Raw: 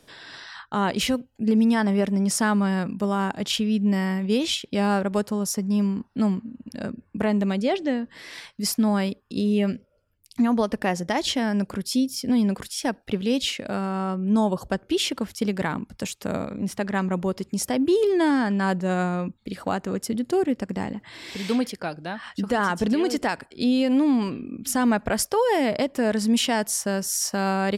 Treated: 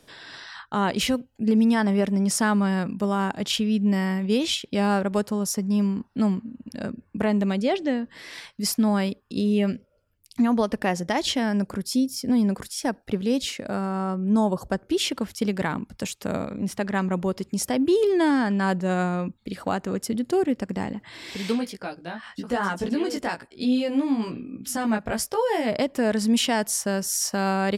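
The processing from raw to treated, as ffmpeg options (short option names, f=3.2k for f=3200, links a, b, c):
-filter_complex "[0:a]asettb=1/sr,asplit=3[a][b][c];[a]atrim=end=11.574[d];[b]atrim=start=11.57:end=15.01,asetpts=PTS-STARTPTS,afade=t=in:d=0.004:c=qsin,afade=t=out:st=3.436:d=0.004:c=qsin,equalizer=f=3k:w=1.5:g=-6[e];[c]atrim=start=15.006[f];[d][e]acrossfade=d=0.004:c1=hsin:c2=qsin[g];[g][f]acrossfade=d=0.004:c1=qsin:c2=hsin,asplit=3[h][i][j];[h]afade=t=out:st=21.51:d=0.02[k];[i]flanger=delay=15.5:depth=3:speed=1.1,afade=t=in:st=21.51:d=0.02,afade=t=out:st=25.67:d=0.02[l];[j]afade=t=in:st=25.67:d=0.02[m];[k][l][m]amix=inputs=3:normalize=0"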